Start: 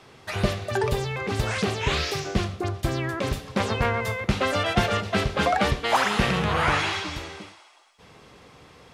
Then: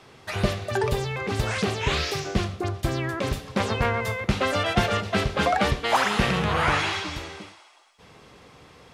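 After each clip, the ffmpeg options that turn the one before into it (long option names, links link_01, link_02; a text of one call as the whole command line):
ffmpeg -i in.wav -af anull out.wav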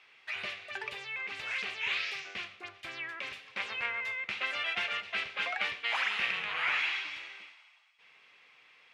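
ffmpeg -i in.wav -af "bandpass=frequency=2400:width_type=q:width=2.8:csg=0" out.wav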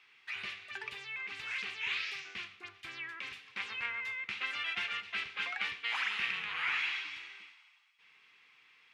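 ffmpeg -i in.wav -af "equalizer=frequency=600:width_type=o:width=0.57:gain=-14.5,volume=-2.5dB" out.wav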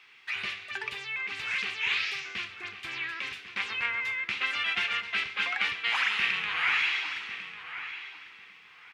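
ffmpeg -i in.wav -filter_complex "[0:a]asplit=2[link_01][link_02];[link_02]adelay=1097,lowpass=frequency=3000:poles=1,volume=-10.5dB,asplit=2[link_03][link_04];[link_04]adelay=1097,lowpass=frequency=3000:poles=1,volume=0.23,asplit=2[link_05][link_06];[link_06]adelay=1097,lowpass=frequency=3000:poles=1,volume=0.23[link_07];[link_01][link_03][link_05][link_07]amix=inputs=4:normalize=0,volume=7dB" out.wav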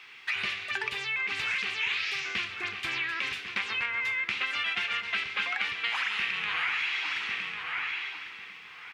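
ffmpeg -i in.wav -af "acompressor=threshold=-34dB:ratio=6,volume=6.5dB" out.wav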